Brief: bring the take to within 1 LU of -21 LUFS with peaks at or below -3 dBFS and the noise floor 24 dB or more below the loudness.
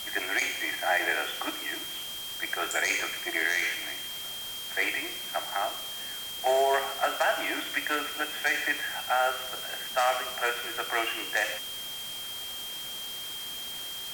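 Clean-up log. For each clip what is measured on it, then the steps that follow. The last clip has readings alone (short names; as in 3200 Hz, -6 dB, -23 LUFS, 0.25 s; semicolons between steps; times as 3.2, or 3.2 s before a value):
steady tone 3200 Hz; tone level -37 dBFS; noise floor -38 dBFS; noise floor target -54 dBFS; loudness -29.5 LUFS; peak -13.5 dBFS; loudness target -21.0 LUFS
-> notch 3200 Hz, Q 30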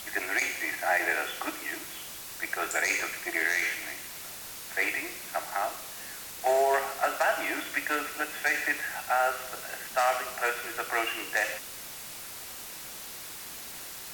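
steady tone none; noise floor -42 dBFS; noise floor target -54 dBFS
-> denoiser 12 dB, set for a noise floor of -42 dBFS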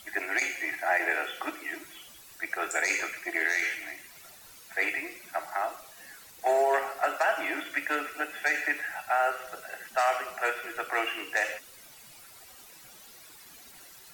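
noise floor -52 dBFS; noise floor target -54 dBFS
-> denoiser 6 dB, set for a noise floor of -52 dBFS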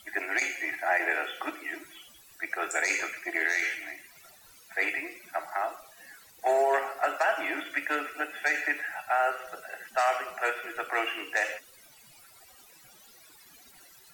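noise floor -56 dBFS; loudness -29.5 LUFS; peak -13.0 dBFS; loudness target -21.0 LUFS
-> gain +8.5 dB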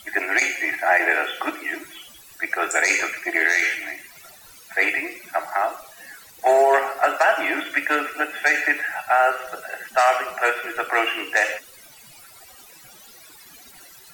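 loudness -21.0 LUFS; peak -4.5 dBFS; noise floor -47 dBFS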